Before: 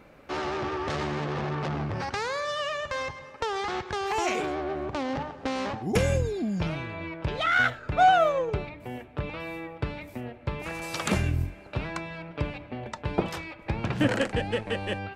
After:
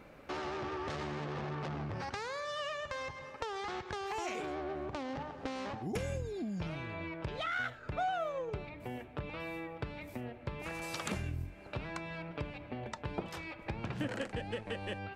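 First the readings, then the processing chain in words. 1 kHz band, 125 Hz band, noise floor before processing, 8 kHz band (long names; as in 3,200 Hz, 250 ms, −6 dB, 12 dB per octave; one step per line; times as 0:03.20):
−12.0 dB, −10.0 dB, −48 dBFS, −9.5 dB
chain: downward compressor 2.5 to 1, threshold −37 dBFS, peak gain reduction 14.5 dB
level −2 dB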